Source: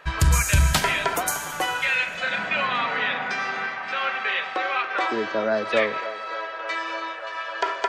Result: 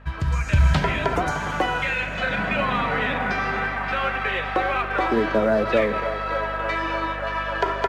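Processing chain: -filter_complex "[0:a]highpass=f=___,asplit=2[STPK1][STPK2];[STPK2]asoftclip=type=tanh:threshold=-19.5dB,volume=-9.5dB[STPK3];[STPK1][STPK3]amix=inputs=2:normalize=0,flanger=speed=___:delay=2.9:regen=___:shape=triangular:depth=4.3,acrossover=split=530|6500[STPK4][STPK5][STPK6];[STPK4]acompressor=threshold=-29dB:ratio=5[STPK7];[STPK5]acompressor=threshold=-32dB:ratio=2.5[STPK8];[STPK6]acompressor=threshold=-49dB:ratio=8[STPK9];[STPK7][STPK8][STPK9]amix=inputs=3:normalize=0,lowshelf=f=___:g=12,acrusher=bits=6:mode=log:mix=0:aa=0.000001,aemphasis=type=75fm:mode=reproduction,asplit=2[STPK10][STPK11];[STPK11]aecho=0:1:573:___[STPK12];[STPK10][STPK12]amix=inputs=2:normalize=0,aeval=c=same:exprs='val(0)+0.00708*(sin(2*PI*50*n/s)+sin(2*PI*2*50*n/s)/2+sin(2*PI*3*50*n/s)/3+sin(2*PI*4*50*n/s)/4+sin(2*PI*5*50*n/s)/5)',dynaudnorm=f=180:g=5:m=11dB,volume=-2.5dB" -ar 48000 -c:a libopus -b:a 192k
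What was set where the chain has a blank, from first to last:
65, 1.9, 78, 120, 0.0841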